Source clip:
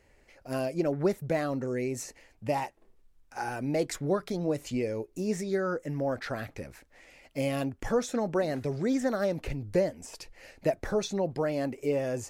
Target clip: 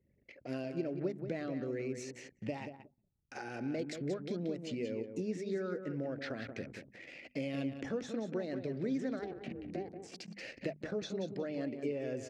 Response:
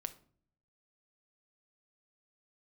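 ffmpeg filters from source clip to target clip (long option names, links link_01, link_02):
-filter_complex "[0:a]acompressor=threshold=-46dB:ratio=3,asplit=2[link_01][link_02];[link_02]aecho=0:1:182|364|546:0.398|0.107|0.029[link_03];[link_01][link_03]amix=inputs=2:normalize=0,asettb=1/sr,asplit=3[link_04][link_05][link_06];[link_04]atrim=end=9.194[link_07];[link_05]atrim=start=9.19:end=10.36,asetpts=PTS-STARTPTS,afade=type=in:duration=0.004:curve=qsin,afade=type=out:start_time=1.166:duration=0.004:curve=qsin,aeval=exprs='val(0)*sin(2*PI*190*n/s)':channel_layout=same[link_08];[link_06]atrim=start=10.356[link_09];[link_07][link_08]acrossfade=duration=0.004:curve1=hsin:curve2=qsin[link_10];[link_10][link_09]acrossfade=duration=0.004:curve1=qsin:curve2=hsin,equalizer=frequency=960:width_type=o:width=1.4:gain=-14.5,anlmdn=0.0001,highpass=180,lowpass=3700,bandreject=frequency=50:width_type=h:width=6,bandreject=frequency=100:width_type=h:width=6,bandreject=frequency=150:width_type=h:width=6,bandreject=frequency=200:width_type=h:width=6,bandreject=frequency=250:width_type=h:width=6,volume=10.5dB"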